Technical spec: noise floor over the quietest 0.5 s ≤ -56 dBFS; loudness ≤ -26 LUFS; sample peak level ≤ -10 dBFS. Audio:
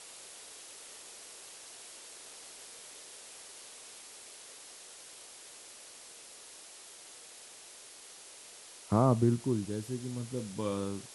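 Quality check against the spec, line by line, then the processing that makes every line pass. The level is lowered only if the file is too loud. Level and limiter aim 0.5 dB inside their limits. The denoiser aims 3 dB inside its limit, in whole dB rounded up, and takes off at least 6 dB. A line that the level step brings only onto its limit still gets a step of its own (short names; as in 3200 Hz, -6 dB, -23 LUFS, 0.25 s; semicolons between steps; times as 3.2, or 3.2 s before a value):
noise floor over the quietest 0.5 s -52 dBFS: fail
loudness -37.0 LUFS: OK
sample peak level -13.5 dBFS: OK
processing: denoiser 7 dB, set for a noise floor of -52 dBFS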